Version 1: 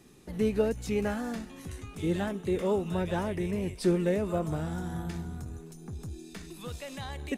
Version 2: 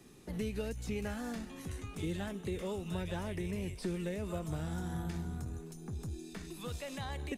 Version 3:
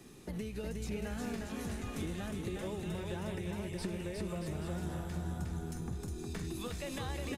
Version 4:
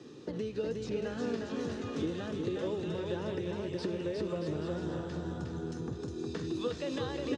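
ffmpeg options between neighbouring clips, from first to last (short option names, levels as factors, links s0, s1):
-filter_complex "[0:a]acrossover=split=120|2000[s0][s1][s2];[s1]acompressor=threshold=0.0158:ratio=6[s3];[s2]alimiter=level_in=5.62:limit=0.0631:level=0:latency=1:release=122,volume=0.178[s4];[s0][s3][s4]amix=inputs=3:normalize=0,volume=0.891"
-filter_complex "[0:a]acompressor=threshold=0.01:ratio=6,asplit=2[s0][s1];[s1]aecho=0:1:360|630|832.5|984.4|1098:0.631|0.398|0.251|0.158|0.1[s2];[s0][s2]amix=inputs=2:normalize=0,volume=1.41"
-af "highpass=f=100:w=0.5412,highpass=f=100:w=1.3066,equalizer=f=190:t=q:w=4:g=-6,equalizer=f=300:t=q:w=4:g=6,equalizer=f=480:t=q:w=4:g=8,equalizer=f=750:t=q:w=4:g=-5,equalizer=f=2200:t=q:w=4:g=-9,lowpass=f=5700:w=0.5412,lowpass=f=5700:w=1.3066,volume=1.5"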